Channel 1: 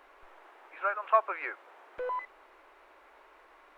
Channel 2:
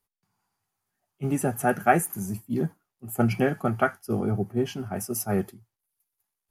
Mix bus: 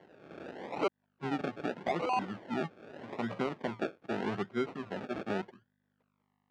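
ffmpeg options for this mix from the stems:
ffmpeg -i stem1.wav -i stem2.wav -filter_complex "[0:a]dynaudnorm=framelen=200:gausssize=3:maxgain=12dB,volume=2dB,asplit=3[link_01][link_02][link_03];[link_01]atrim=end=0.88,asetpts=PTS-STARTPTS,afade=type=out:start_time=0.876:duration=0.004:curve=hsin[link_04];[link_02]atrim=start=0.88:end=1.74,asetpts=PTS-STARTPTS,volume=0[link_05];[link_03]atrim=start=1.74,asetpts=PTS-STARTPTS,afade=type=in:duration=0.004:curve=hsin[link_06];[link_04][link_05][link_06]concat=n=3:v=0:a=1[link_07];[1:a]aeval=exprs='val(0)+0.000891*(sin(2*PI*50*n/s)+sin(2*PI*2*50*n/s)/2+sin(2*PI*3*50*n/s)/3+sin(2*PI*4*50*n/s)/4+sin(2*PI*5*50*n/s)/5)':channel_layout=same,volume=-4.5dB,asplit=2[link_08][link_09];[link_09]apad=whole_len=166419[link_10];[link_07][link_10]sidechaincompress=threshold=-46dB:ratio=3:attack=48:release=234[link_11];[link_11][link_08]amix=inputs=2:normalize=0,acrusher=samples=35:mix=1:aa=0.000001:lfo=1:lforange=21:lforate=0.82,highpass=230,lowpass=2600,alimiter=limit=-20.5dB:level=0:latency=1:release=165" out.wav

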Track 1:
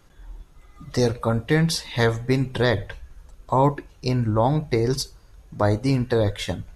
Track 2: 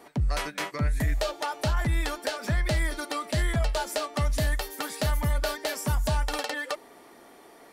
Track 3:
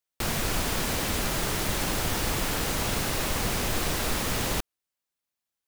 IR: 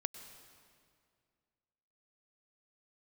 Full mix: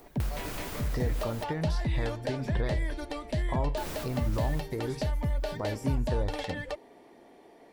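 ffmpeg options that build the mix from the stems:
-filter_complex "[0:a]alimiter=limit=-14.5dB:level=0:latency=1:release=347,acompressor=threshold=-32dB:ratio=2,volume=-3dB,asplit=2[link_01][link_02];[1:a]equalizer=frequency=1300:width=2.6:gain=-12,volume=-1dB[link_03];[2:a]aemphasis=mode=production:type=50fm,acompressor=mode=upward:threshold=-21dB:ratio=2.5,volume=-6dB,asplit=3[link_04][link_05][link_06];[link_04]atrim=end=1.44,asetpts=PTS-STARTPTS,afade=type=out:start_time=1.436:duration=0.004:curve=hsin[link_07];[link_05]atrim=start=1.44:end=3.77,asetpts=PTS-STARTPTS,volume=0[link_08];[link_06]atrim=start=3.77,asetpts=PTS-STARTPTS,afade=type=in:duration=0.004:curve=hsin[link_09];[link_07][link_08][link_09]concat=n=3:v=0:a=1,asplit=2[link_10][link_11];[link_11]volume=-21.5dB[link_12];[link_02]apad=whole_len=250197[link_13];[link_10][link_13]sidechaincompress=threshold=-44dB:ratio=5:attack=11:release=163[link_14];[link_03][link_14]amix=inputs=2:normalize=0,acompressor=threshold=-25dB:ratio=6,volume=0dB[link_15];[3:a]atrim=start_sample=2205[link_16];[link_12][link_16]afir=irnorm=-1:irlink=0[link_17];[link_01][link_15][link_17]amix=inputs=3:normalize=0,lowpass=frequency=1800:poles=1"

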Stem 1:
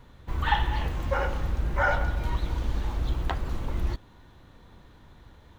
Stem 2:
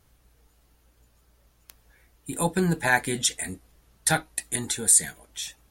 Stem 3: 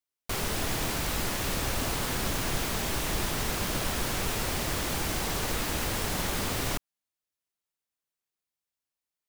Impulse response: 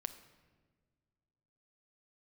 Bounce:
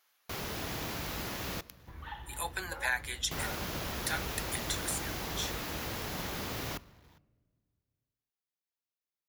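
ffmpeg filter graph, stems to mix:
-filter_complex "[0:a]acrusher=bits=8:mix=0:aa=0.000001,acompressor=threshold=-38dB:ratio=2,highpass=52,adelay=1600,volume=-9dB[link_01];[1:a]highpass=1100,acompressor=threshold=-26dB:ratio=6,volume=-1.5dB[link_02];[2:a]highpass=50,volume=-9.5dB,asplit=3[link_03][link_04][link_05];[link_03]atrim=end=1.61,asetpts=PTS-STARTPTS,afade=type=out:start_time=1.606:duration=0.004:curve=hsin[link_06];[link_04]atrim=start=1.61:end=3.31,asetpts=PTS-STARTPTS,volume=0[link_07];[link_05]atrim=start=3.31,asetpts=PTS-STARTPTS,afade=type=in:duration=0.004:curve=hsin[link_08];[link_06][link_07][link_08]concat=n=3:v=0:a=1,asplit=2[link_09][link_10];[link_10]volume=-5dB[link_11];[3:a]atrim=start_sample=2205[link_12];[link_11][link_12]afir=irnorm=-1:irlink=0[link_13];[link_01][link_02][link_09][link_13]amix=inputs=4:normalize=0,equalizer=frequency=8600:width_type=o:width=0.34:gain=-12.5"

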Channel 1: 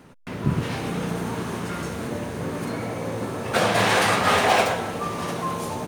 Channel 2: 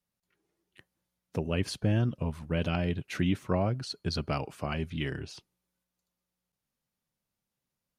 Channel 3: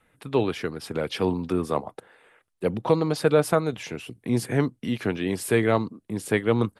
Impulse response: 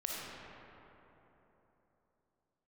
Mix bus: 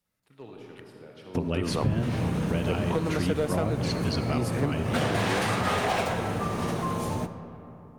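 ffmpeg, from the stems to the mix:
-filter_complex "[0:a]lowshelf=frequency=200:gain=11.5,adelay=1400,volume=-5dB,asplit=2[link_01][link_02];[link_02]volume=-12dB[link_03];[1:a]volume=1.5dB,asplit=3[link_04][link_05][link_06];[link_05]volume=-7dB[link_07];[2:a]aeval=exprs='clip(val(0),-1,0.168)':channel_layout=same,adelay=50,volume=-2dB,asplit=2[link_08][link_09];[link_09]volume=-21dB[link_10];[link_06]apad=whole_len=301711[link_11];[link_08][link_11]sidechaingate=range=-33dB:threshold=-46dB:ratio=16:detection=peak[link_12];[3:a]atrim=start_sample=2205[link_13];[link_03][link_07][link_10]amix=inputs=3:normalize=0[link_14];[link_14][link_13]afir=irnorm=-1:irlink=0[link_15];[link_01][link_04][link_12][link_15]amix=inputs=4:normalize=0,acompressor=threshold=-24dB:ratio=3"

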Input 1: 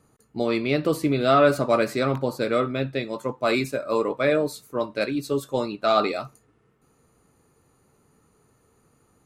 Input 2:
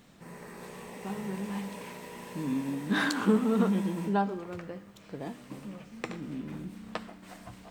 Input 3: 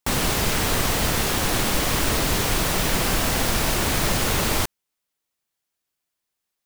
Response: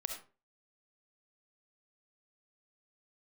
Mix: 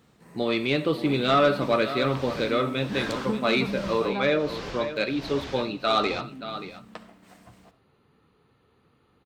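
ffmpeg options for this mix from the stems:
-filter_complex "[0:a]highshelf=frequency=5100:width_type=q:width=3:gain=-13,bandreject=frequency=640:width=12,volume=-4dB,asplit=4[link_01][link_02][link_03][link_04];[link_02]volume=-8.5dB[link_05];[link_03]volume=-10.5dB[link_06];[1:a]volume=-7.5dB,asplit=2[link_07][link_08];[link_08]volume=-8.5dB[link_09];[2:a]tremolo=f=1.3:d=0.95,lowpass=frequency=5400:width=0.5412,lowpass=frequency=5400:width=1.3066,adelay=1550,volume=-8dB,asplit=2[link_10][link_11];[link_11]volume=-21.5dB[link_12];[link_04]apad=whole_len=361650[link_13];[link_10][link_13]sidechaincompress=threshold=-30dB:ratio=8:attack=43:release=974[link_14];[3:a]atrim=start_sample=2205[link_15];[link_05][link_09]amix=inputs=2:normalize=0[link_16];[link_16][link_15]afir=irnorm=-1:irlink=0[link_17];[link_06][link_12]amix=inputs=2:normalize=0,aecho=0:1:577:1[link_18];[link_01][link_07][link_14][link_17][link_18]amix=inputs=5:normalize=0,highpass=44,asoftclip=type=tanh:threshold=-10.5dB"

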